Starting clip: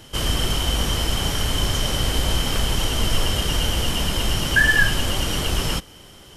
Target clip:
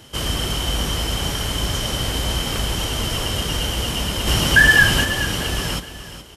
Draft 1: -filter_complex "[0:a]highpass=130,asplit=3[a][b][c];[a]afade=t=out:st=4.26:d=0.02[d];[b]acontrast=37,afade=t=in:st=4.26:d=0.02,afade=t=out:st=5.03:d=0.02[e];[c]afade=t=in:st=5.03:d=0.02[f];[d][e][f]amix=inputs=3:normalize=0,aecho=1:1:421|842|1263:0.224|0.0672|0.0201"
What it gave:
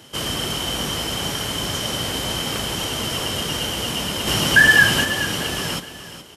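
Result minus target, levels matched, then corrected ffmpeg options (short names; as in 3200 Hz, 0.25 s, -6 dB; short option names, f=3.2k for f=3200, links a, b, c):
125 Hz band -4.5 dB
-filter_complex "[0:a]highpass=44,asplit=3[a][b][c];[a]afade=t=out:st=4.26:d=0.02[d];[b]acontrast=37,afade=t=in:st=4.26:d=0.02,afade=t=out:st=5.03:d=0.02[e];[c]afade=t=in:st=5.03:d=0.02[f];[d][e][f]amix=inputs=3:normalize=0,aecho=1:1:421|842|1263:0.224|0.0672|0.0201"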